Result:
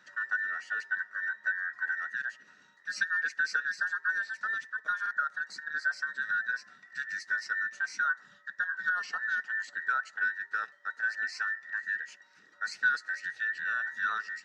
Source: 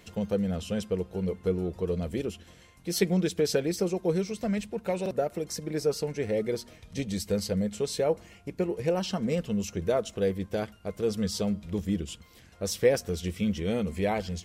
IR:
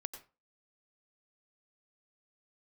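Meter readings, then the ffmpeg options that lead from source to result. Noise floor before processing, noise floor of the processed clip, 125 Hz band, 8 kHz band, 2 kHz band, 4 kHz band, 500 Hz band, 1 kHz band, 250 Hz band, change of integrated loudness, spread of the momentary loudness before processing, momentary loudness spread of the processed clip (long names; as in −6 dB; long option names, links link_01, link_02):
−55 dBFS, −61 dBFS, below −35 dB, −12.5 dB, +16.0 dB, −8.0 dB, below −30 dB, +3.0 dB, below −35 dB, −2.0 dB, 7 LU, 7 LU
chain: -filter_complex "[0:a]afftfilt=real='real(if(between(b,1,1012),(2*floor((b-1)/92)+1)*92-b,b),0)':imag='imag(if(between(b,1,1012),(2*floor((b-1)/92)+1)*92-b,b),0)*if(between(b,1,1012),-1,1)':win_size=2048:overlap=0.75,highpass=160,equalizer=frequency=200:width_type=q:width=4:gain=7,equalizer=frequency=1400:width_type=q:width=4:gain=7,equalizer=frequency=3200:width_type=q:width=4:gain=-9,lowpass=frequency=6200:width=0.5412,lowpass=frequency=6200:width=1.3066,acrossover=split=540|1700[link_01][link_02][link_03];[link_01]acompressor=threshold=-56dB:ratio=4[link_04];[link_02]acompressor=threshold=-25dB:ratio=4[link_05];[link_04][link_05][link_03]amix=inputs=3:normalize=0,volume=-6.5dB"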